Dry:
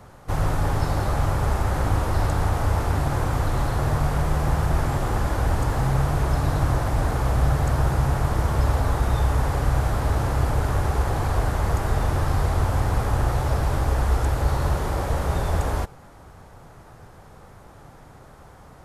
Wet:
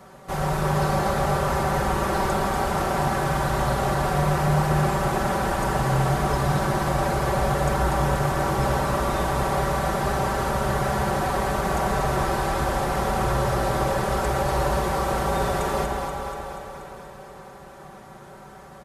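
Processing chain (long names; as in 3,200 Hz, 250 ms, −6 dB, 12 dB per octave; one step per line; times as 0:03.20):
high-pass filter 170 Hz 6 dB per octave
comb filter 5.2 ms, depth 75%
delay that swaps between a low-pass and a high-pass 120 ms, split 850 Hz, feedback 81%, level −4 dB
spring reverb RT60 3.4 s, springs 34/53 ms, chirp 25 ms, DRR 5.5 dB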